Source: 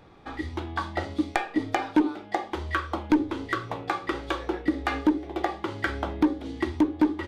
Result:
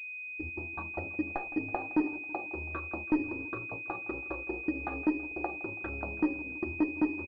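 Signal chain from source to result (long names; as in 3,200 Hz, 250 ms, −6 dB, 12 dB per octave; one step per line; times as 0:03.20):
adaptive Wiener filter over 25 samples
noise gate −34 dBFS, range −30 dB
hum removal 335.1 Hz, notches 4
low-pass that shuts in the quiet parts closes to 580 Hz, open at −19 dBFS
repeating echo 164 ms, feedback 58%, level −17 dB
switching amplifier with a slow clock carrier 2,500 Hz
level −6.5 dB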